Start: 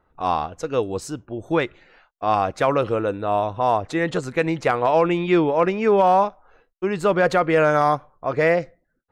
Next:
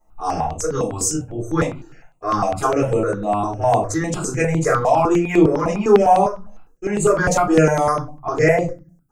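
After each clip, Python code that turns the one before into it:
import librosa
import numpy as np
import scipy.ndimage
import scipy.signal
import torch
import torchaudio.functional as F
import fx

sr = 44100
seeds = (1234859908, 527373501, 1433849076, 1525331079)

y = fx.high_shelf_res(x, sr, hz=4900.0, db=10.5, q=3.0)
y = fx.room_shoebox(y, sr, seeds[0], volume_m3=160.0, walls='furnished', distance_m=3.9)
y = fx.phaser_held(y, sr, hz=9.9, low_hz=390.0, high_hz=5400.0)
y = y * 10.0 ** (-4.0 / 20.0)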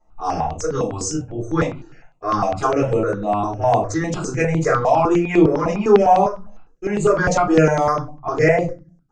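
y = scipy.signal.sosfilt(scipy.signal.butter(4, 6300.0, 'lowpass', fs=sr, output='sos'), x)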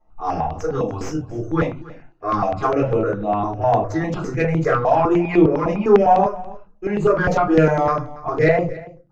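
y = fx.tracing_dist(x, sr, depth_ms=0.068)
y = fx.air_absorb(y, sr, metres=170.0)
y = y + 10.0 ** (-19.5 / 20.0) * np.pad(y, (int(283 * sr / 1000.0), 0))[:len(y)]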